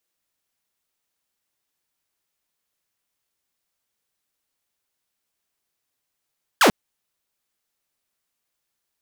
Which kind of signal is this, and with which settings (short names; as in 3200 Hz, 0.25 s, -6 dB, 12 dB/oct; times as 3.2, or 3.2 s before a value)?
laser zap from 1800 Hz, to 170 Hz, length 0.09 s saw, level -9 dB